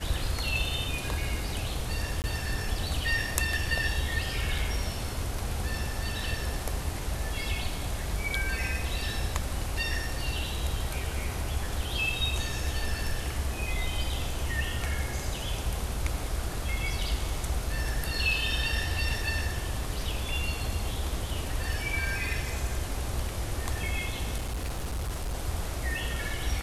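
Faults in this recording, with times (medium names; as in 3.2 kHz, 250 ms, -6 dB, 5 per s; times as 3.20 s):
2.22–2.24 s: dropout 19 ms
24.37–25.35 s: clipped -28.5 dBFS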